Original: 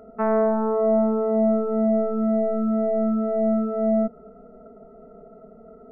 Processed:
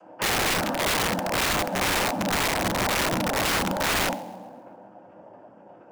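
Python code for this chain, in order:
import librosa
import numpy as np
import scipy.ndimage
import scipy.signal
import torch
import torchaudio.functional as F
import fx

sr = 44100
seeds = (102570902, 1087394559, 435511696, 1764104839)

y = scipy.signal.sosfilt(scipy.signal.butter(12, 150.0, 'highpass', fs=sr, output='sos'), x)
y = fx.bass_treble(y, sr, bass_db=-5, treble_db=12)
y = fx.notch(y, sr, hz=940.0, q=5.4)
y = y + 0.88 * np.pad(y, (int(5.8 * sr / 1000.0), 0))[:len(y)]
y = fx.rider(y, sr, range_db=10, speed_s=2.0)
y = fx.noise_vocoder(y, sr, seeds[0], bands=8)
y = fx.rev_double_slope(y, sr, seeds[1], early_s=0.44, late_s=2.4, knee_db=-18, drr_db=-1.5)
y = (np.mod(10.0 ** (13.0 / 20.0) * y + 1.0, 2.0) - 1.0) / 10.0 ** (13.0 / 20.0)
y = fx.echo_wet_highpass(y, sr, ms=134, feedback_pct=42, hz=1800.0, wet_db=-22.0)
y = y * librosa.db_to_amplitude(-6.0)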